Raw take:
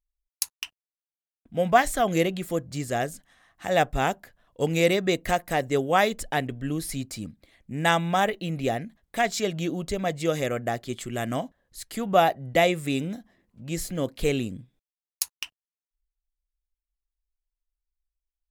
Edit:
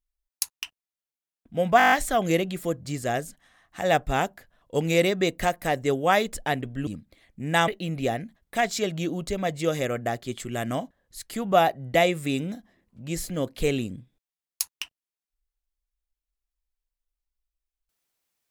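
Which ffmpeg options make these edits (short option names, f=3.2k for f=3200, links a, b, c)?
-filter_complex "[0:a]asplit=10[a][b][c][d][e][f][g][h][i][j];[a]atrim=end=1.802[k];[b]atrim=start=1.778:end=1.802[l];[c]atrim=start=1.778:end=1.802[m];[d]atrim=start=1.778:end=1.802[n];[e]atrim=start=1.778:end=1.802[o];[f]atrim=start=1.778:end=1.802[p];[g]atrim=start=1.778:end=1.802[q];[h]atrim=start=1.778:end=6.732[r];[i]atrim=start=7.178:end=7.992[s];[j]atrim=start=8.288[t];[k][l]acrossfade=d=0.004:c1=hsin:c2=hsin[u];[u][m]acrossfade=d=0.004:c1=hsin:c2=hsin[v];[v][n]acrossfade=d=0.004:c1=hsin:c2=hsin[w];[w][o]acrossfade=d=0.004:c1=hsin:c2=hsin[x];[x][p]acrossfade=d=0.004:c1=hsin:c2=hsin[y];[y][q]acrossfade=d=0.004:c1=hsin:c2=hsin[z];[z][r]acrossfade=d=0.004:c1=hsin:c2=hsin[aa];[aa][s]acrossfade=d=0.004:c1=hsin:c2=hsin[ab];[ab][t]acrossfade=d=0.004:c1=hsin:c2=hsin"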